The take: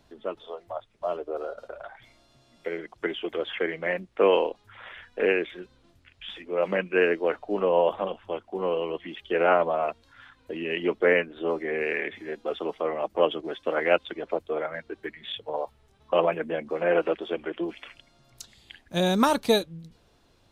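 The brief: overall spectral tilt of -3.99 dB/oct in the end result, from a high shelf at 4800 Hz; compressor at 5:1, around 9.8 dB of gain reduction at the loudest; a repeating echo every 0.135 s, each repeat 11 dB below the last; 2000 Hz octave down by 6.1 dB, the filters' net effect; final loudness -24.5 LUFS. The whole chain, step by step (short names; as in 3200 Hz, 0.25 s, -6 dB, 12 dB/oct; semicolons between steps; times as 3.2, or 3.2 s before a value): bell 2000 Hz -7 dB; high shelf 4800 Hz -5.5 dB; compressor 5:1, threshold -27 dBFS; feedback echo 0.135 s, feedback 28%, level -11 dB; gain +9 dB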